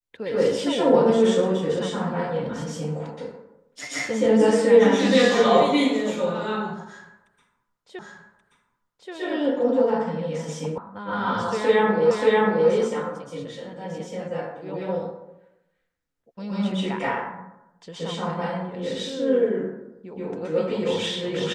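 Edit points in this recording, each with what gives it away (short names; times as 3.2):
7.99 repeat of the last 1.13 s
10.78 sound cut off
12.11 repeat of the last 0.58 s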